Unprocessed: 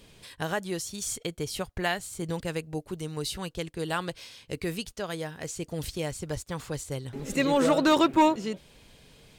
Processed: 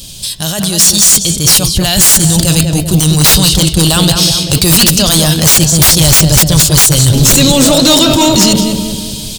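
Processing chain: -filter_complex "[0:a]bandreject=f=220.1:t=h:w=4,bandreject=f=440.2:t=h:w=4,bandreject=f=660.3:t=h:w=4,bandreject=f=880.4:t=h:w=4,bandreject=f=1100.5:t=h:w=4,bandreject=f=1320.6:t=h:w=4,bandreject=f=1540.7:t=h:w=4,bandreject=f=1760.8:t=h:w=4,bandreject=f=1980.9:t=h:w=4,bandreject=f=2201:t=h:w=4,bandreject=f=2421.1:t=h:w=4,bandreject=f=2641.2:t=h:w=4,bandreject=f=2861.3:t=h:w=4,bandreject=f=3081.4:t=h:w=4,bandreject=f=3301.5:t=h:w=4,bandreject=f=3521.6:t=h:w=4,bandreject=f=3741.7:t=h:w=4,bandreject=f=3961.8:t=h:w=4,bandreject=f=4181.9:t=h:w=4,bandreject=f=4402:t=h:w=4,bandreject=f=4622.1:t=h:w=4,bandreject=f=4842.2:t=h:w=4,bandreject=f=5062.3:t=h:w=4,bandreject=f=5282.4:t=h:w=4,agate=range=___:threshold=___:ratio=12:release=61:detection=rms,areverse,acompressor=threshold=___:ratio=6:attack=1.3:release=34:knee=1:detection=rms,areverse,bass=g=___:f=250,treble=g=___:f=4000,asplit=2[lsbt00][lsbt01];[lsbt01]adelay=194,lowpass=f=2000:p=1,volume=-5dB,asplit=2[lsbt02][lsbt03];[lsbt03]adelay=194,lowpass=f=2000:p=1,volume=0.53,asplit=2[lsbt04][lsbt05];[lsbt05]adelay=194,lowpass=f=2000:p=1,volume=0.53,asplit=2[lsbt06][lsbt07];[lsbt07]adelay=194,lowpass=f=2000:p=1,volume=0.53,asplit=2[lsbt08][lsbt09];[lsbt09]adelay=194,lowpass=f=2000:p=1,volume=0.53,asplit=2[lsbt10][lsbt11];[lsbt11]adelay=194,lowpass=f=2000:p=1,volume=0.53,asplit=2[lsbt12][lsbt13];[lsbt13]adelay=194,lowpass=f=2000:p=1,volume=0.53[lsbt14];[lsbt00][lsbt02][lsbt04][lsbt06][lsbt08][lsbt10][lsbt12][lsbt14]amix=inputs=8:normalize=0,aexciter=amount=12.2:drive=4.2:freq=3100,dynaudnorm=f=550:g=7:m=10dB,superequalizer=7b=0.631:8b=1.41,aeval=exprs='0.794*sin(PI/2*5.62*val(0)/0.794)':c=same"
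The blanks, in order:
-8dB, -41dB, -38dB, 12, -2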